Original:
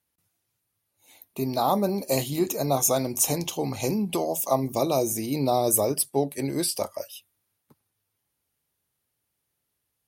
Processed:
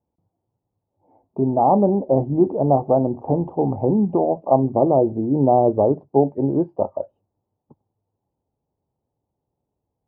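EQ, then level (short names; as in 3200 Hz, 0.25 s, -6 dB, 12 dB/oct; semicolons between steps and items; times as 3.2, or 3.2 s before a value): Chebyshev low-pass 880 Hz, order 4; +8.5 dB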